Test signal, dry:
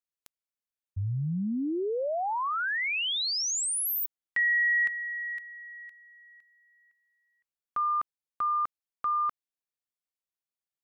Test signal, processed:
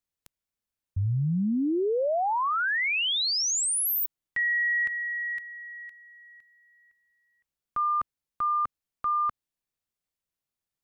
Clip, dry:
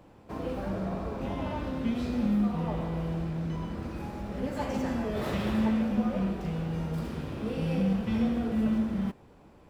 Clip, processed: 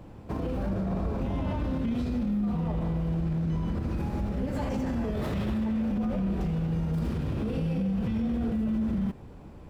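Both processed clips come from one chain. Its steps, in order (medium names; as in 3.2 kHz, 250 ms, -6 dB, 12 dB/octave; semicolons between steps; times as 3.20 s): bass shelf 220 Hz +11 dB; peak limiter -25.5 dBFS; trim +3 dB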